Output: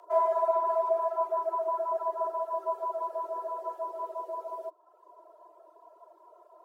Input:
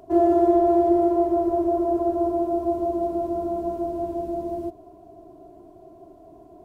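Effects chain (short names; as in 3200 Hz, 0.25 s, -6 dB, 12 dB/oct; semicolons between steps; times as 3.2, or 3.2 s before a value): frequency shift +310 Hz; reverb removal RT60 0.9 s; gain -6 dB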